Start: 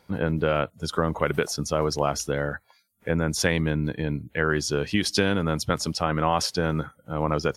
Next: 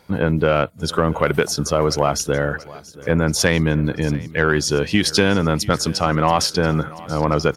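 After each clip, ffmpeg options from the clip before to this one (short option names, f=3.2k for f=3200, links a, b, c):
-af "acontrast=83,aecho=1:1:682|1364|2046|2728|3410:0.1|0.057|0.0325|0.0185|0.0106"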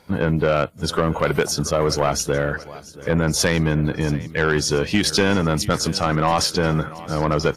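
-af "asoftclip=type=tanh:threshold=-8.5dB" -ar 32000 -c:a aac -b:a 48k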